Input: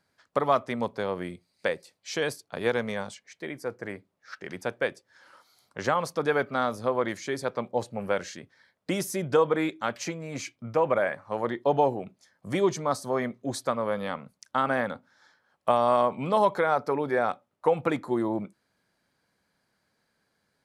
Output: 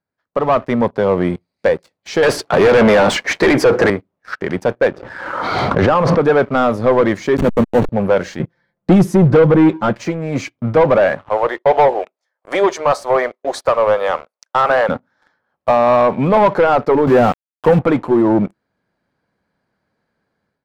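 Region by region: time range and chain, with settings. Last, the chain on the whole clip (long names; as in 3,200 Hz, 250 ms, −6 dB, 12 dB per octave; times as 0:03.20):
0:02.23–0:03.90: mid-hump overdrive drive 30 dB, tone 2,200 Hz, clips at −10.5 dBFS + high-shelf EQ 5,100 Hz +7 dB + downward compressor, threshold −24 dBFS
0:04.88–0:06.20: low-pass filter 2,400 Hz + background raised ahead of every attack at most 30 dB per second
0:07.37–0:07.89: hold until the input has moved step −31 dBFS + parametric band 230 Hz +9 dB 1.3 octaves + notch filter 5,000 Hz, Q 6.1
0:08.39–0:10.01: low-shelf EQ 360 Hz +11.5 dB + comb filter 5.8 ms, depth 80%
0:11.29–0:14.89: high-pass filter 490 Hz 24 dB per octave + noise gate −57 dBFS, range −7 dB
0:17.07–0:17.79: high-pass filter 66 Hz + parametric band 180 Hz +10 dB 1.4 octaves + centre clipping without the shift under −34.5 dBFS
whole clip: automatic gain control gain up to 15 dB; leveller curve on the samples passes 3; low-pass filter 1,200 Hz 6 dB per octave; level −3 dB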